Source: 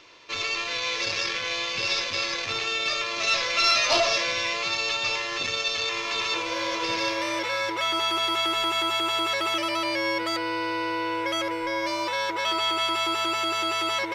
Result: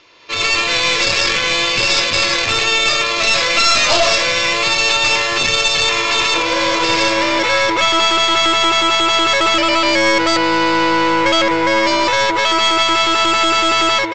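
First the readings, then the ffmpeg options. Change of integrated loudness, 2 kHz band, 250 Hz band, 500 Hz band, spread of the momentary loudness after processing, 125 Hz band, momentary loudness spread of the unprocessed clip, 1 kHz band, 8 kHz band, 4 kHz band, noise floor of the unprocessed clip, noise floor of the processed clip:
+12.0 dB, +12.0 dB, +13.0 dB, +12.0 dB, 2 LU, +14.5 dB, 5 LU, +12.0 dB, +13.0 dB, +11.5 dB, −31 dBFS, −18 dBFS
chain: -af "dynaudnorm=framelen=140:gausssize=5:maxgain=14dB,bandreject=frequency=5900:width=14,aresample=16000,aeval=exprs='clip(val(0),-1,0.126)':channel_layout=same,aresample=44100,alimiter=level_in=3.5dB:limit=-1dB:release=50:level=0:latency=1,volume=-1dB"

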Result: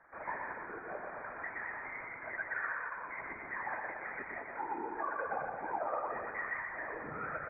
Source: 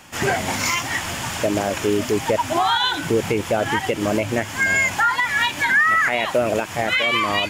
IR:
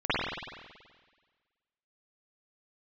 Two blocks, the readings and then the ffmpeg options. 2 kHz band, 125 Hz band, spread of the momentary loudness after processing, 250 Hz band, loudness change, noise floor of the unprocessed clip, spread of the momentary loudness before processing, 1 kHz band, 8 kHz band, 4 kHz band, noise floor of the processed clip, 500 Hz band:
−19.0 dB, −28.5 dB, 6 LU, −26.0 dB, −20.0 dB, −32 dBFS, 6 LU, −16.5 dB, below −40 dB, below −40 dB, −47 dBFS, −21.5 dB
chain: -af "highpass=630,tiltshelf=frequency=970:gain=-8.5,alimiter=limit=-12.5dB:level=0:latency=1:release=307,acompressor=threshold=-24dB:ratio=3,asoftclip=type=tanh:threshold=-22dB,flanger=delay=3:depth=6.6:regen=62:speed=1.2:shape=triangular,adynamicsmooth=sensitivity=2.5:basefreq=1100,afftfilt=real='hypot(re,im)*cos(2*PI*random(0))':imag='hypot(re,im)*sin(2*PI*random(1))':win_size=512:overlap=0.75,aecho=1:1:120|216|292.8|354.2|403.4:0.631|0.398|0.251|0.158|0.1,lowpass=frequency=2100:width_type=q:width=0.5098,lowpass=frequency=2100:width_type=q:width=0.6013,lowpass=frequency=2100:width_type=q:width=0.9,lowpass=frequency=2100:width_type=q:width=2.563,afreqshift=-2500,volume=2dB"

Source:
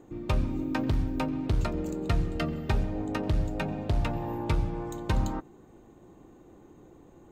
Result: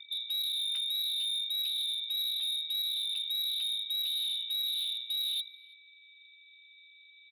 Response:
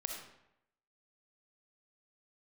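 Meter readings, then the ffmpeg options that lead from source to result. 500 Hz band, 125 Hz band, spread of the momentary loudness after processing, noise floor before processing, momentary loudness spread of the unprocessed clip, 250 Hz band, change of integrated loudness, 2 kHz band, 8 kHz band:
below −40 dB, below −40 dB, 2 LU, −54 dBFS, 4 LU, below −40 dB, +0.5 dB, −10.0 dB, +8.5 dB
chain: -filter_complex "[0:a]afwtdn=0.0158,lowshelf=frequency=380:width_type=q:width=1.5:gain=13,areverse,acompressor=threshold=-23dB:ratio=16,areverse,lowpass=frequency=3300:width_type=q:width=0.5098,lowpass=frequency=3300:width_type=q:width=0.6013,lowpass=frequency=3300:width_type=q:width=0.9,lowpass=frequency=3300:width_type=q:width=2.563,afreqshift=-3900,asoftclip=type=hard:threshold=-27dB,asplit=2[link_01][link_02];[link_02]adelay=329,lowpass=frequency=1100:poles=1,volume=-13.5dB,asplit=2[link_03][link_04];[link_04]adelay=329,lowpass=frequency=1100:poles=1,volume=0.54,asplit=2[link_05][link_06];[link_06]adelay=329,lowpass=frequency=1100:poles=1,volume=0.54,asplit=2[link_07][link_08];[link_08]adelay=329,lowpass=frequency=1100:poles=1,volume=0.54,asplit=2[link_09][link_10];[link_10]adelay=329,lowpass=frequency=1100:poles=1,volume=0.54[link_11];[link_03][link_05][link_07][link_09][link_11]amix=inputs=5:normalize=0[link_12];[link_01][link_12]amix=inputs=2:normalize=0,aeval=exprs='val(0)+0.00224*sin(2*PI*2300*n/s)':channel_layout=same,volume=-3.5dB"

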